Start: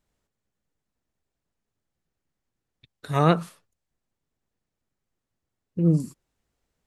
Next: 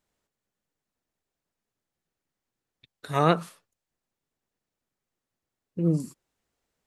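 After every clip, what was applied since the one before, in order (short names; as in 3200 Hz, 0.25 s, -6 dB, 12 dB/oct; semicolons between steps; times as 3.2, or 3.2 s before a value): low shelf 160 Hz -9.5 dB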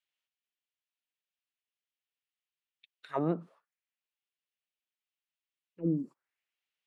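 auto-wah 270–2900 Hz, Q 2.6, down, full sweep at -21 dBFS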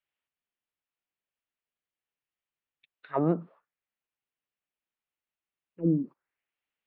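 air absorption 440 m; gain +5.5 dB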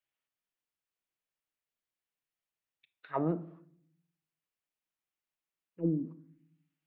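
compressor, threshold -25 dBFS, peak gain reduction 5.5 dB; shoebox room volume 930 m³, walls furnished, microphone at 0.61 m; gain -2.5 dB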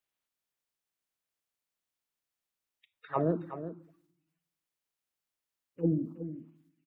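bin magnitudes rounded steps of 30 dB; echo 0.37 s -11.5 dB; gain +3 dB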